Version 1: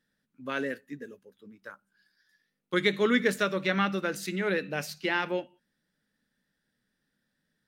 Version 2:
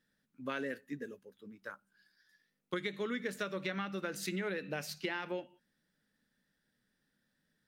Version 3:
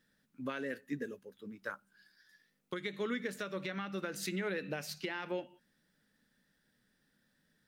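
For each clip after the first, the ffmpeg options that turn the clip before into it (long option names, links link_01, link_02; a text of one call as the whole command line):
ffmpeg -i in.wav -af "acompressor=threshold=-32dB:ratio=16,volume=-1dB" out.wav
ffmpeg -i in.wav -af "alimiter=level_in=7dB:limit=-24dB:level=0:latency=1:release=474,volume=-7dB,volume=4.5dB" out.wav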